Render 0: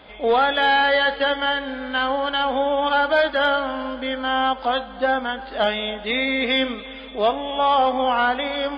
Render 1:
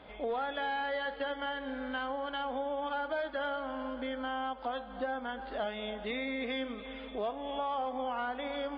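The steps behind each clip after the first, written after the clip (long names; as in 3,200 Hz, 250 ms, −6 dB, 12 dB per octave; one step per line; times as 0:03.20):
high-shelf EQ 2,400 Hz −9.5 dB
downward compressor 3 to 1, threshold −30 dBFS, peak gain reduction 11 dB
level −5 dB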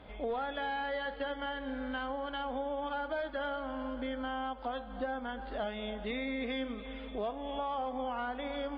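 low-shelf EQ 170 Hz +10 dB
level −2 dB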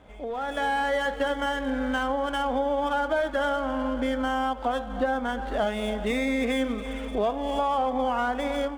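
running median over 9 samples
automatic gain control gain up to 10.5 dB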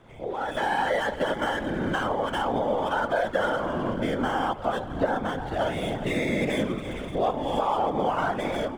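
random phases in short frames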